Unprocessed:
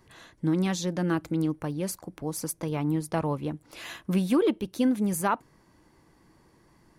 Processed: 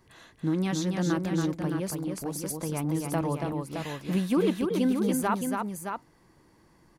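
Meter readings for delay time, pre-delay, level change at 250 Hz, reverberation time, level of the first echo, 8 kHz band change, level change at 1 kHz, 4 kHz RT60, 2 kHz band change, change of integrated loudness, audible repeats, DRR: 281 ms, no reverb audible, 0.0 dB, no reverb audible, −4.5 dB, 0.0 dB, 0.0 dB, no reverb audible, 0.0 dB, −0.5 dB, 2, no reverb audible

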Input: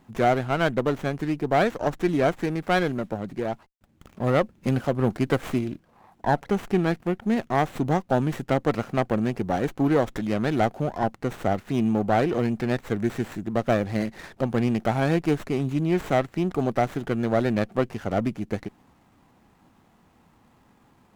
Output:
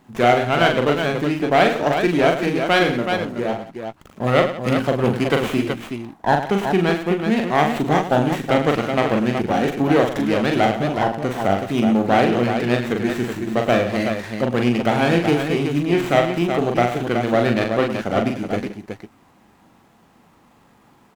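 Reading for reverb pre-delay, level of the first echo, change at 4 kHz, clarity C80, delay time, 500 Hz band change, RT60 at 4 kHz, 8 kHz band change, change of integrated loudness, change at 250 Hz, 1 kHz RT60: no reverb audible, −4.5 dB, +11.5 dB, no reverb audible, 41 ms, +6.5 dB, no reverb audible, +7.5 dB, +6.0 dB, +5.0 dB, no reverb audible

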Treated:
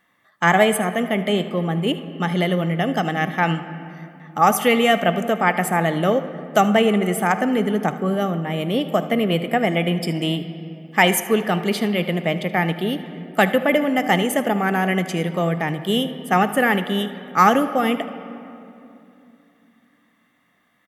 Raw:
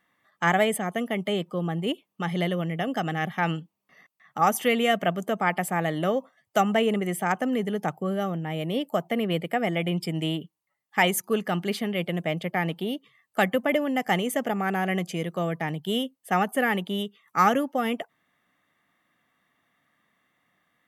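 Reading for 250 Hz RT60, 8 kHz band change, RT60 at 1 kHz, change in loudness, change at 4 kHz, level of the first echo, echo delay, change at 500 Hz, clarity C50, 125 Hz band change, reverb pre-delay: 3.9 s, +6.0 dB, 2.7 s, +6.5 dB, +6.5 dB, −17.5 dB, 77 ms, +6.5 dB, 11.0 dB, +6.5 dB, 3 ms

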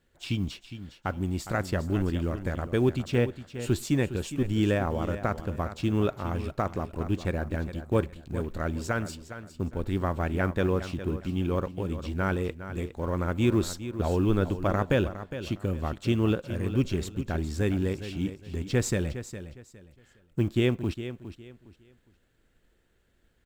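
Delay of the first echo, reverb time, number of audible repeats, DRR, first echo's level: 410 ms, no reverb audible, 2, no reverb audible, −12.0 dB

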